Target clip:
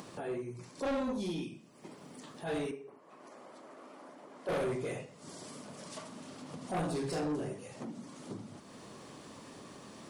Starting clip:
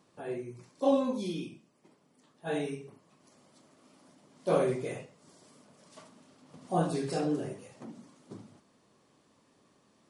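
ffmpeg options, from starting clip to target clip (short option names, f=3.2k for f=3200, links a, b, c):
-filter_complex "[0:a]acompressor=mode=upward:threshold=-37dB:ratio=2.5,asettb=1/sr,asplit=3[a][b][c];[a]atrim=end=2.714[d];[b]atrim=start=2.71:end=4.49,asetpts=PTS-STARTPTS,afade=t=in:d=0.004:c=qsin,afade=t=out:st=1.776:d=0.004:c=qsin,acrossover=split=300 2100:gain=0.1 1 0.2[e][f][g];[e][f][g]amix=inputs=3:normalize=0[h];[c]atrim=start=4.486[i];[d][h]acrossfade=d=0.004:c1=hsin:c2=qsin[j];[j][i]acrossfade=d=0.004:c1=qsin:c2=hsin,asoftclip=type=tanh:threshold=-31dB,volume=1dB"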